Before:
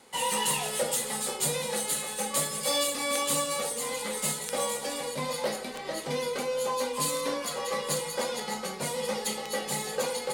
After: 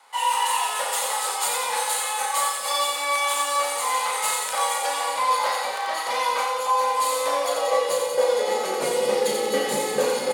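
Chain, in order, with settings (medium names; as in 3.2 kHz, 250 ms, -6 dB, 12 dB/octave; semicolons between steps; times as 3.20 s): high-pass sweep 950 Hz -> 300 Hz, 6.52–9.38 s; tone controls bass +3 dB, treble -3 dB; on a send: two-band feedback delay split 690 Hz, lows 225 ms, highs 88 ms, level -4 dB; on the sum: gain riding within 3 dB 0.5 s; doubling 35 ms -5 dB; trim +2.5 dB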